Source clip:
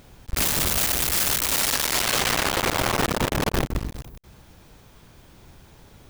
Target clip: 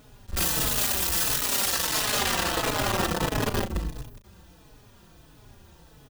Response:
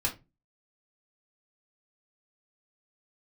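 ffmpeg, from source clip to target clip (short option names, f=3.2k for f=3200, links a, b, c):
-filter_complex "[0:a]bandreject=f=2.2k:w=10,asplit=2[a][b];[b]adelay=37,volume=-10.5dB[c];[a][c]amix=inputs=2:normalize=0,asplit=2[d][e];[e]adelay=4.2,afreqshift=-1.5[f];[d][f]amix=inputs=2:normalize=1"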